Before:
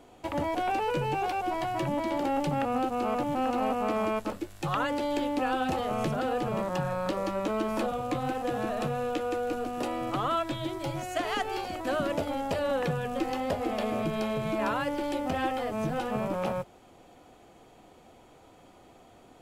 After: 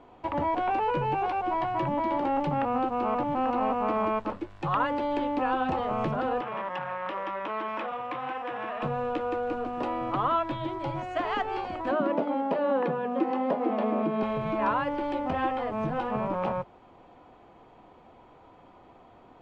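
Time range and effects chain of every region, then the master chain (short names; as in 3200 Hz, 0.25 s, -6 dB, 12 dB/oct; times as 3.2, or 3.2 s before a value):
6.41–8.83 polynomial smoothing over 25 samples + tilt +4.5 dB/oct + core saturation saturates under 1500 Hz
11.91–14.23 steep high-pass 200 Hz + tilt -2.5 dB/oct
whole clip: LPF 2700 Hz 12 dB/oct; bell 1000 Hz +7.5 dB 0.42 oct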